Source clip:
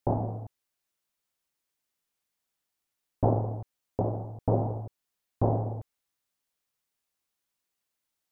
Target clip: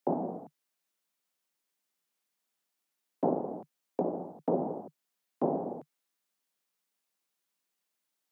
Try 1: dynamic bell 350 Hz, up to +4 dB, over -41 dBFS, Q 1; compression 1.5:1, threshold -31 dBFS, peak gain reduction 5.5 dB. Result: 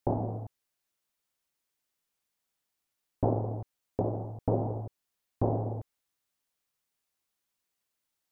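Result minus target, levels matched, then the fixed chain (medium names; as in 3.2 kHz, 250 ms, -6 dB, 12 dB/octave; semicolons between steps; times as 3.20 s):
125 Hz band +12.0 dB
dynamic bell 350 Hz, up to +4 dB, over -41 dBFS, Q 1; steep high-pass 150 Hz 72 dB/octave; compression 1.5:1, threshold -31 dBFS, peak gain reduction 4.5 dB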